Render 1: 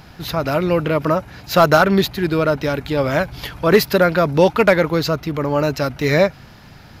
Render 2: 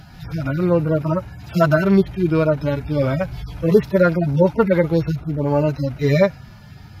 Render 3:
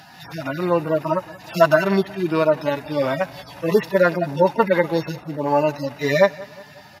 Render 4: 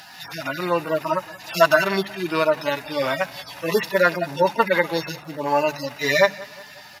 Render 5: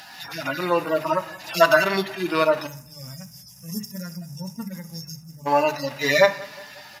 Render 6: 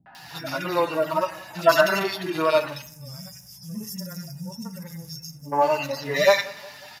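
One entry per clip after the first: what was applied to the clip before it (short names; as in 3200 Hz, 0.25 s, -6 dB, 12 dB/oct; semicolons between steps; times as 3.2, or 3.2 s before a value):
median-filter separation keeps harmonic; low shelf 91 Hz +11.5 dB
HPF 370 Hz 12 dB/oct; comb 1.1 ms, depth 43%; feedback echo 0.182 s, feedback 50%, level -21 dB; gain +3.5 dB
tilt shelf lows -6 dB, about 920 Hz; notches 50/100/150/200 Hz; crackle 97/s -41 dBFS
spectral gain 2.67–5.46, 250–4800 Hz -27 dB; notches 50/100/150/200 Hz; on a send at -11.5 dB: reverb RT60 0.60 s, pre-delay 4 ms
three bands offset in time lows, mids, highs 60/150 ms, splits 270/1800 Hz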